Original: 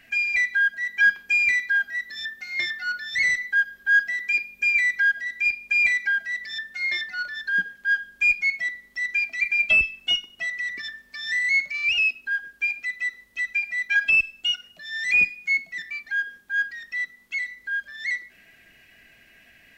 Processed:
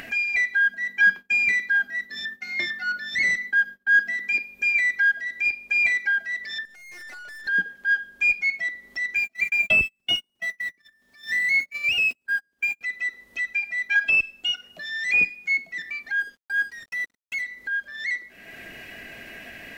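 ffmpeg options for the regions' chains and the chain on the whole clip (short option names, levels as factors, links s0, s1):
-filter_complex "[0:a]asettb=1/sr,asplit=3[s0][s1][s2];[s0]atrim=end=0.644[s3];[s1]atrim=start=0.64:end=4.42,asetpts=PTS-STARTPTS,afade=t=in:d=0.004:c=qsin,afade=t=out:st=3.776:d=0.004:c=qsin,agate=range=0.0224:threshold=0.0126:ratio=3:release=100:detection=peak,equalizer=f=210:t=o:w=0.83:g=9[s4];[s2]atrim=start=4.416[s5];[s3][s4]acrossfade=d=0.004:c1=hsin:c2=qsin[s6];[s6][s5]acrossfade=d=0.004:c1=qsin:c2=hsin,asettb=1/sr,asplit=3[s7][s8][s9];[s7]atrim=end=6.654[s10];[s8]atrim=start=6.65:end=7.47,asetpts=PTS-STARTPTS,afade=t=in:d=0.004:c=qsin,afade=t=out:st=0.816:d=0.004:c=qsin,asuperstop=centerf=3500:order=20:qfactor=4.7,acompressor=threshold=0.01:ratio=12:attack=3.2:release=140:knee=1:detection=peak,aeval=exprs='(tanh(398*val(0)+0.5)-tanh(0.5))/398':c=same[s11];[s9]atrim=start=7.466[s12];[s10][s11]acrossfade=d=0.004:c1=hsin:c2=qsin[s13];[s13][s12]acrossfade=d=0.004:c1=qsin:c2=hsin,asettb=1/sr,asplit=3[s14][s15][s16];[s14]atrim=end=9.154[s17];[s15]atrim=start=9.15:end=12.81,asetpts=PTS-STARTPTS,afade=t=in:d=0.004:c=qsin,afade=t=out:st=3.656:d=0.004:c=qsin,aeval=exprs='val(0)+0.5*0.0141*sgn(val(0))':c=same,agate=range=0.0141:threshold=0.0398:ratio=16:release=100:detection=peak,equalizer=f=140:t=o:w=1.7:g=7[s18];[s16]atrim=start=12.806[s19];[s17][s18]acrossfade=d=0.004:c1=hsin:c2=qsin[s20];[s20][s19]acrossfade=d=0.004:c1=qsin:c2=hsin,asettb=1/sr,asplit=3[s21][s22][s23];[s21]atrim=end=16.204[s24];[s22]atrim=start=16.2:end=17.42,asetpts=PTS-STARTPTS,afade=t=in:d=0.004:c=qsin,afade=t=out:st=1.216:d=0.004:c=qsin,lowshelf=f=480:g=4,aeval=exprs='sgn(val(0))*max(abs(val(0))-0.00596,0)':c=same[s25];[s23]atrim=start=17.416[s26];[s24][s25]acrossfade=d=0.004:c1=hsin:c2=qsin[s27];[s27][s26]acrossfade=d=0.004:c1=qsin:c2=hsin,equalizer=f=480:w=0.43:g=8,acompressor=mode=upward:threshold=0.0501:ratio=2.5,volume=0.75"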